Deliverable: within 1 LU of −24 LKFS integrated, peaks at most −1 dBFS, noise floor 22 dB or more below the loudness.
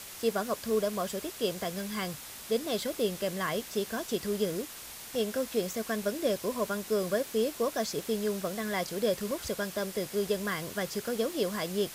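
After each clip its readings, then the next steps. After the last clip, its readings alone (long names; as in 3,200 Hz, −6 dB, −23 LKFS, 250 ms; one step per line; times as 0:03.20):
number of dropouts 2; longest dropout 1.1 ms; background noise floor −45 dBFS; target noise floor −54 dBFS; integrated loudness −32.0 LKFS; sample peak −16.0 dBFS; target loudness −24.0 LKFS
→ repair the gap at 0:05.15/0:09.31, 1.1 ms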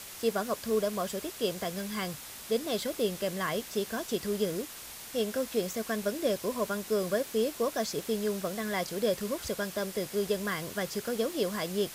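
number of dropouts 0; background noise floor −45 dBFS; target noise floor −54 dBFS
→ broadband denoise 9 dB, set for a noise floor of −45 dBFS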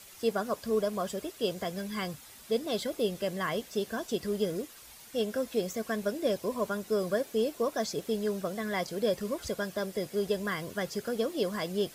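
background noise floor −51 dBFS; target noise floor −55 dBFS
→ broadband denoise 6 dB, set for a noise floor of −51 dBFS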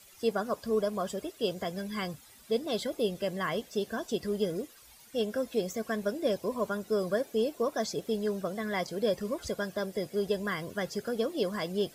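background noise floor −56 dBFS; integrated loudness −32.5 LKFS; sample peak −16.5 dBFS; target loudness −24.0 LKFS
→ level +8.5 dB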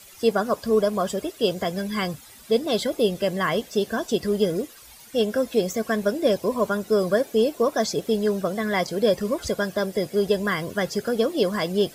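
integrated loudness −24.0 LKFS; sample peak −8.0 dBFS; background noise floor −47 dBFS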